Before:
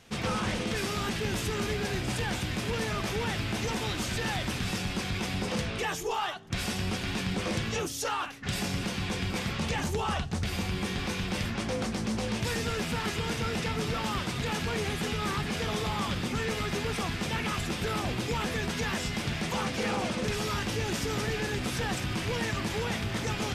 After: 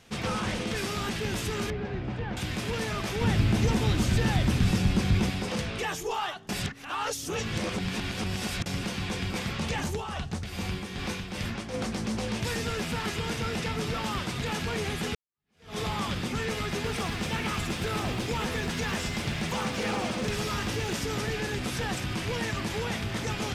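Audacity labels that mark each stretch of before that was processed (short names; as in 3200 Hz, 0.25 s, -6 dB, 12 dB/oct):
1.700000	2.370000	tape spacing loss at 10 kHz 37 dB
3.210000	5.300000	low shelf 320 Hz +12 dB
6.490000	8.660000	reverse
9.880000	11.740000	tremolo 2.5 Hz, depth 52%
15.150000	15.780000	fade in exponential
16.730000	20.960000	lo-fi delay 0.109 s, feedback 35%, word length 9-bit, level -9 dB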